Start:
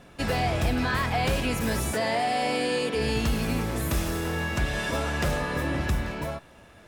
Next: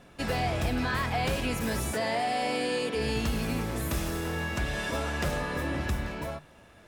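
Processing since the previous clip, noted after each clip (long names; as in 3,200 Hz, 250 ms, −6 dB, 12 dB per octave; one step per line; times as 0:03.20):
mains-hum notches 50/100/150 Hz
level −3 dB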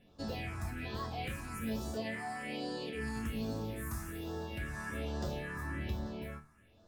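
all-pass phaser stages 4, 1.2 Hz, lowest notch 500–2,300 Hz
resonators tuned to a chord D2 major, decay 0.24 s
level +1.5 dB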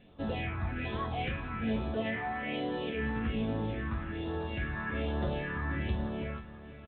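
repeating echo 488 ms, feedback 56%, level −15.5 dB
level +5 dB
A-law companding 64 kbit/s 8,000 Hz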